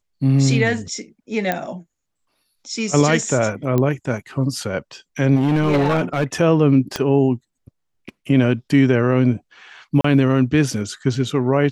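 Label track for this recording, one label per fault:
1.520000	1.520000	pop -7 dBFS
3.780000	3.780000	pop -8 dBFS
5.350000	6.240000	clipped -13 dBFS
6.960000	6.960000	pop -7 dBFS
10.010000	10.040000	dropout 34 ms

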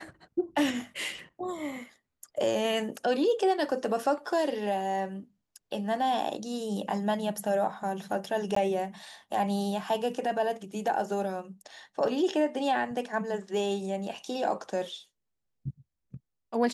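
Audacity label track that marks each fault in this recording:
8.550000	8.560000	dropout 14 ms

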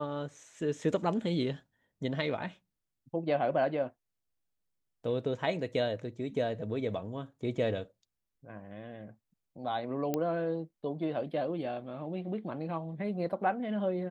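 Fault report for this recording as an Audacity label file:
10.140000	10.140000	pop -17 dBFS

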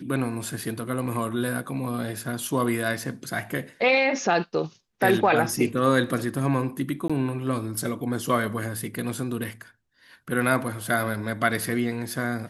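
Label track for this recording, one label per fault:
7.080000	7.100000	dropout 16 ms

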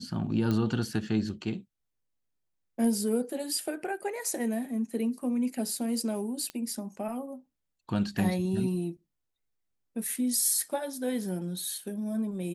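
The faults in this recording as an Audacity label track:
0.510000	0.510000	pop -18 dBFS
6.500000	6.500000	pop -22 dBFS

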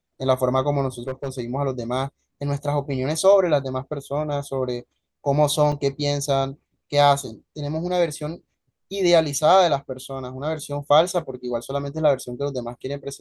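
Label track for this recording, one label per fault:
0.990000	1.380000	clipped -21 dBFS
5.720000	5.720000	dropout 4.5 ms

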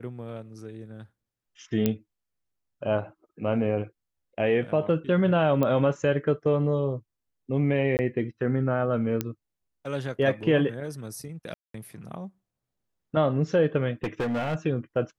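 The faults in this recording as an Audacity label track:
1.860000	1.860000	pop -10 dBFS
5.630000	5.630000	pop -14 dBFS
7.970000	7.990000	dropout 19 ms
9.210000	9.210000	pop -12 dBFS
11.540000	11.740000	dropout 203 ms
14.030000	14.560000	clipped -24 dBFS

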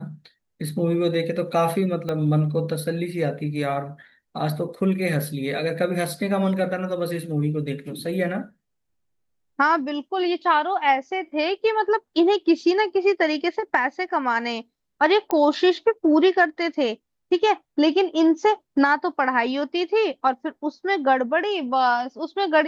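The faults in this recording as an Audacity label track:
2.090000	2.090000	pop -16 dBFS
15.310000	15.310000	pop -11 dBFS

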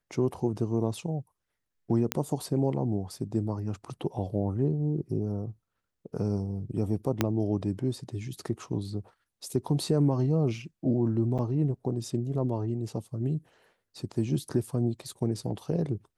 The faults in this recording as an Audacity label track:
2.120000	2.120000	pop -9 dBFS
7.210000	7.210000	pop -9 dBFS
11.380000	11.390000	dropout 7.3 ms

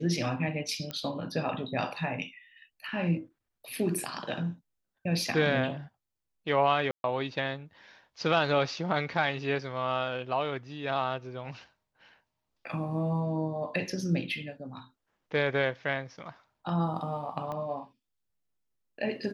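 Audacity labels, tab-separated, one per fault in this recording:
0.910000	0.910000	pop -20 dBFS
6.910000	7.040000	dropout 131 ms
17.520000	17.520000	pop -25 dBFS

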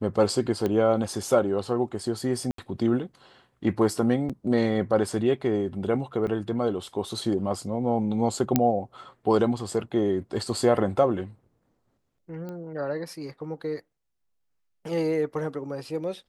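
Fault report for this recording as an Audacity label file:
0.660000	0.660000	pop -15 dBFS
2.510000	2.580000	dropout 73 ms
4.290000	4.300000	dropout 6.5 ms
6.270000	6.270000	dropout 4.3 ms
8.560000	8.560000	pop -5 dBFS
12.490000	12.490000	pop -25 dBFS

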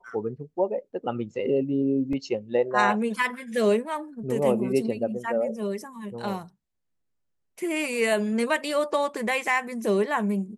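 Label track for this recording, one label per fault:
2.130000	2.130000	dropout 2.1 ms

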